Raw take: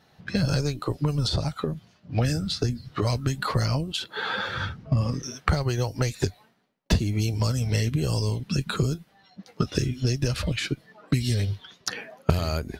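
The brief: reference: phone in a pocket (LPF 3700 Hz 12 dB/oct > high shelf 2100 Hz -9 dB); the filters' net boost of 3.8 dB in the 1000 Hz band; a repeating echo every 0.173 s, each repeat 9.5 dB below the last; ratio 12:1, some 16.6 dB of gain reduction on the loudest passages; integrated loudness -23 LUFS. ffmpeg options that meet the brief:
-af "equalizer=f=1k:t=o:g=7.5,acompressor=threshold=-32dB:ratio=12,lowpass=3.7k,highshelf=f=2.1k:g=-9,aecho=1:1:173|346|519|692:0.335|0.111|0.0365|0.012,volume=15.5dB"

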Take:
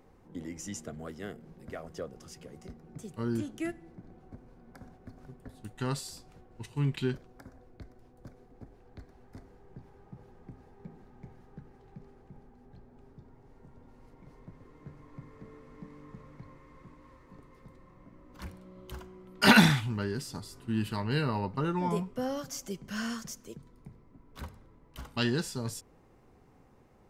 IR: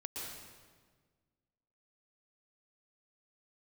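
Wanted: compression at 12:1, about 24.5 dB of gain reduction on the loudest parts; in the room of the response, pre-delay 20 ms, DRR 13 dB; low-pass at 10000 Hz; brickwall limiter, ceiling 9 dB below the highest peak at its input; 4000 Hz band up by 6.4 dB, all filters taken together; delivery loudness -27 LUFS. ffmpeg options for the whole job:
-filter_complex "[0:a]lowpass=10k,equalizer=f=4k:t=o:g=8,acompressor=threshold=-38dB:ratio=12,alimiter=level_in=9.5dB:limit=-24dB:level=0:latency=1,volume=-9.5dB,asplit=2[a][b];[1:a]atrim=start_sample=2205,adelay=20[c];[b][c]afir=irnorm=-1:irlink=0,volume=-13dB[d];[a][d]amix=inputs=2:normalize=0,volume=20.5dB"

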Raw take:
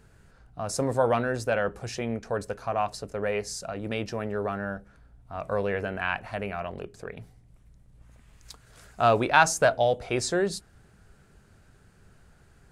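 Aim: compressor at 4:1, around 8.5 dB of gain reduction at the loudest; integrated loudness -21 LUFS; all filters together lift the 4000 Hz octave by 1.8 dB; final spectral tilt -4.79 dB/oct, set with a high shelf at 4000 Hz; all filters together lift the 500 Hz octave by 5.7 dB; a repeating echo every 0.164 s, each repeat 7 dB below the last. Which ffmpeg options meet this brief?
-af "equalizer=f=500:t=o:g=7,highshelf=f=4k:g=-6,equalizer=f=4k:t=o:g=6,acompressor=threshold=-22dB:ratio=4,aecho=1:1:164|328|492|656|820:0.447|0.201|0.0905|0.0407|0.0183,volume=6.5dB"

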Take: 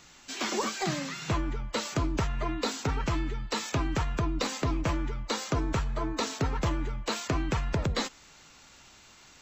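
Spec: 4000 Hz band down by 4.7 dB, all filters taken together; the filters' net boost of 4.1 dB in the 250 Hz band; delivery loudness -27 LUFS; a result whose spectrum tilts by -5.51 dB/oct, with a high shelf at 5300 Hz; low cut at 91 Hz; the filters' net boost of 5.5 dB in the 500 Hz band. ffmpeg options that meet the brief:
-af "highpass=91,equalizer=f=250:t=o:g=3.5,equalizer=f=500:t=o:g=6,equalizer=f=4k:t=o:g=-3.5,highshelf=f=5.3k:g=-5.5,volume=3dB"

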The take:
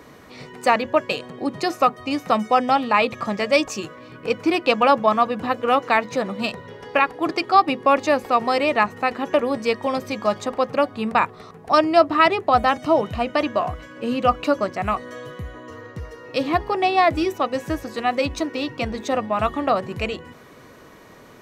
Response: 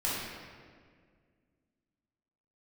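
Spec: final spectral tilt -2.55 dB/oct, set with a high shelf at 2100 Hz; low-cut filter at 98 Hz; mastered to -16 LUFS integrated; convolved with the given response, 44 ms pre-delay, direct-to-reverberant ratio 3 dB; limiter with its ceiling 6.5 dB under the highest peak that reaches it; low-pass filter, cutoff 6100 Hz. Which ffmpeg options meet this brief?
-filter_complex "[0:a]highpass=98,lowpass=6.1k,highshelf=f=2.1k:g=4.5,alimiter=limit=-8.5dB:level=0:latency=1,asplit=2[a][b];[1:a]atrim=start_sample=2205,adelay=44[c];[b][c]afir=irnorm=-1:irlink=0,volume=-11dB[d];[a][d]amix=inputs=2:normalize=0,volume=4.5dB"

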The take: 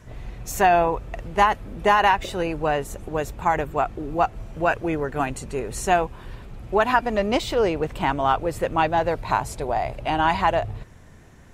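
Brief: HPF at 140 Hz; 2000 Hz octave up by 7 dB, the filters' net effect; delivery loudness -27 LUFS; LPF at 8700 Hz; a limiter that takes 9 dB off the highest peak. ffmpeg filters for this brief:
-af "highpass=140,lowpass=8.7k,equalizer=f=2k:t=o:g=9,volume=-3.5dB,alimiter=limit=-13dB:level=0:latency=1"

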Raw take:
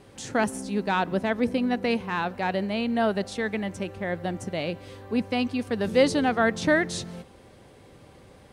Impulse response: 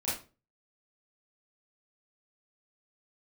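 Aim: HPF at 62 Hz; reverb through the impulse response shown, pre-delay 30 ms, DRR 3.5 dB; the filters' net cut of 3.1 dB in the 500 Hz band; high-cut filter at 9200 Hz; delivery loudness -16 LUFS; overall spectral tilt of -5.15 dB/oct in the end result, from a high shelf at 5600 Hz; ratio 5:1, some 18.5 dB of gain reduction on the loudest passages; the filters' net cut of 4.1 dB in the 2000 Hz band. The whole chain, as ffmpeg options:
-filter_complex "[0:a]highpass=62,lowpass=9.2k,equalizer=f=500:t=o:g=-3.5,equalizer=f=2k:t=o:g=-4,highshelf=f=5.6k:g=-8.5,acompressor=threshold=-40dB:ratio=5,asplit=2[a][b];[1:a]atrim=start_sample=2205,adelay=30[c];[b][c]afir=irnorm=-1:irlink=0,volume=-9dB[d];[a][d]amix=inputs=2:normalize=0,volume=24.5dB"

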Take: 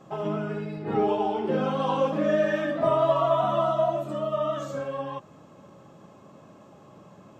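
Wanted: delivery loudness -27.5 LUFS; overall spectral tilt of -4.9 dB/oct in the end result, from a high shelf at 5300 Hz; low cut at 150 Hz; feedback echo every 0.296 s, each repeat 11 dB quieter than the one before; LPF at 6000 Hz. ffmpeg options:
-af "highpass=150,lowpass=6k,highshelf=f=5.3k:g=4,aecho=1:1:296|592|888:0.282|0.0789|0.0221,volume=-1.5dB"

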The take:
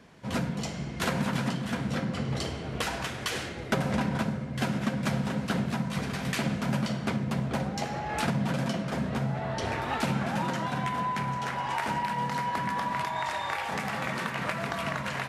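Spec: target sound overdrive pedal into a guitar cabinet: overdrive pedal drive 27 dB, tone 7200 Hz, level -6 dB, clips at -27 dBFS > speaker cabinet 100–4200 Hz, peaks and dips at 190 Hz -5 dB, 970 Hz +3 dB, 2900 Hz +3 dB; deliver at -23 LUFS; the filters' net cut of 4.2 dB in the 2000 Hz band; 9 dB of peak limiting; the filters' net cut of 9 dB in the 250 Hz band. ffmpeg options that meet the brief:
-filter_complex "[0:a]equalizer=f=250:t=o:g=-9,equalizer=f=2k:t=o:g=-6,alimiter=level_in=3dB:limit=-24dB:level=0:latency=1,volume=-3dB,asplit=2[a][b];[b]highpass=f=720:p=1,volume=27dB,asoftclip=type=tanh:threshold=-27dB[c];[a][c]amix=inputs=2:normalize=0,lowpass=f=7.2k:p=1,volume=-6dB,highpass=100,equalizer=f=190:t=q:w=4:g=-5,equalizer=f=970:t=q:w=4:g=3,equalizer=f=2.9k:t=q:w=4:g=3,lowpass=f=4.2k:w=0.5412,lowpass=f=4.2k:w=1.3066,volume=8dB"

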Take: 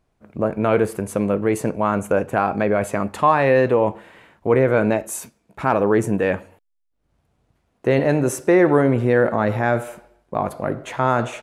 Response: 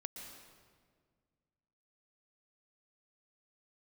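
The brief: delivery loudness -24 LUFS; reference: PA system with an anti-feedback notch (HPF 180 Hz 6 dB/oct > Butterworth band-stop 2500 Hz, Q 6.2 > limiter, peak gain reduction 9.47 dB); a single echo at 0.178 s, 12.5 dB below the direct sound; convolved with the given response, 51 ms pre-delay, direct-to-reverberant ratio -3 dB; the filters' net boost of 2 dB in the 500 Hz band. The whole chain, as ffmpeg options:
-filter_complex "[0:a]equalizer=f=500:t=o:g=3,aecho=1:1:178:0.237,asplit=2[a][b];[1:a]atrim=start_sample=2205,adelay=51[c];[b][c]afir=irnorm=-1:irlink=0,volume=5.5dB[d];[a][d]amix=inputs=2:normalize=0,highpass=f=180:p=1,asuperstop=centerf=2500:order=8:qfactor=6.2,volume=-6.5dB,alimiter=limit=-14dB:level=0:latency=1"

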